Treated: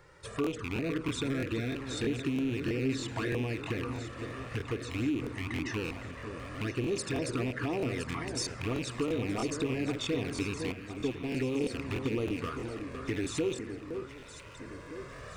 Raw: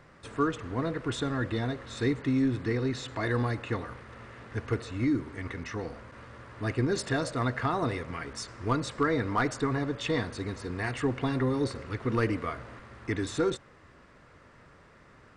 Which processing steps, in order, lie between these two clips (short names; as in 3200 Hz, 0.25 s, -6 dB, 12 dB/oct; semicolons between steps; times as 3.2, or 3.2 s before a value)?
rattling part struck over -36 dBFS, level -24 dBFS; recorder AGC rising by 6.9 dB/s; envelope flanger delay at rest 2.3 ms, full sweep at -23 dBFS; in parallel at +1 dB: limiter -26 dBFS, peak gain reduction 8.5 dB; on the sum: compressor 5:1, threshold -27 dBFS, peak gain reduction 7.5 dB; dynamic EQ 380 Hz, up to +7 dB, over -44 dBFS, Q 0.91; 10.72–11.29 gate -25 dBFS, range -21 dB; high shelf 5800 Hz +9 dB; on a send: echo with dull and thin repeats by turns 0.508 s, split 2000 Hz, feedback 71%, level -7.5 dB; on the sum: crackling interface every 0.32 s, samples 1024, repeat, from 0.42; gain -6.5 dB